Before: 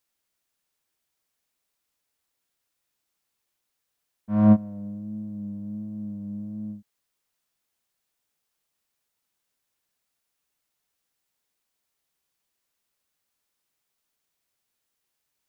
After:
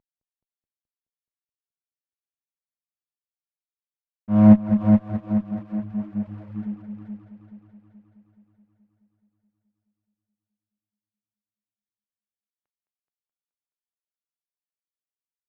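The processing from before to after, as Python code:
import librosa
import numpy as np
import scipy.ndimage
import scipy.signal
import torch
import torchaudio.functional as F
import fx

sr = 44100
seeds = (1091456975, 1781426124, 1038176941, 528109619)

p1 = fx.cvsd(x, sr, bps=16000)
p2 = scipy.signal.sosfilt(scipy.signal.butter(2, 1200.0, 'lowpass', fs=sr, output='sos'), p1)
p3 = fx.echo_heads(p2, sr, ms=213, heads='first and second', feedback_pct=60, wet_db=-6.5)
p4 = fx.dereverb_blind(p3, sr, rt60_s=1.2)
p5 = p4 + fx.echo_single(p4, sr, ms=651, db=-21.0, dry=0)
p6 = fx.running_max(p5, sr, window=5)
y = p6 * 10.0 ** (6.0 / 20.0)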